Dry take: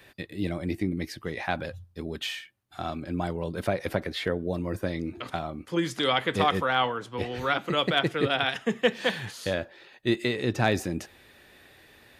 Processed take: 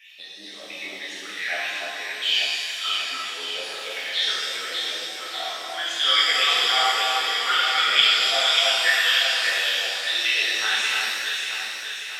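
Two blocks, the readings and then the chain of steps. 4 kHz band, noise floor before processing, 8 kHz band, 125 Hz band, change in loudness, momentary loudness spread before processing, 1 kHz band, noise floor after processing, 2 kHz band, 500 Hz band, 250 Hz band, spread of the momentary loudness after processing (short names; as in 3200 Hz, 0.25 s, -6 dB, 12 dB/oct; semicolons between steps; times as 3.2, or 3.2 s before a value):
+14.5 dB, -56 dBFS, +14.5 dB, under -30 dB, +8.0 dB, 10 LU, +3.0 dB, -39 dBFS, +9.5 dB, -6.0 dB, -19.0 dB, 13 LU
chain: weighting filter D; phaser stages 8, 0.63 Hz, lowest notch 640–2500 Hz; LFO high-pass sine 4.4 Hz 630–2500 Hz; on a send: echo with dull and thin repeats by turns 0.295 s, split 1500 Hz, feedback 74%, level -2 dB; on the sum: shimmer reverb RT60 1.7 s, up +7 st, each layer -8 dB, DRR -8 dB; gain -8.5 dB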